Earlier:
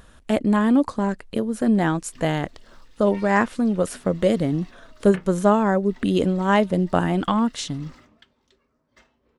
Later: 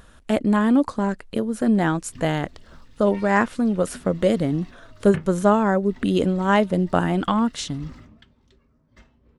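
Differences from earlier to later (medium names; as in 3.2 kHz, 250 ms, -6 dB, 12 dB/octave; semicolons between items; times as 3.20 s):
speech: add peaking EQ 1.4 kHz +2.5 dB 0.22 oct; background: add tone controls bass +14 dB, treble -2 dB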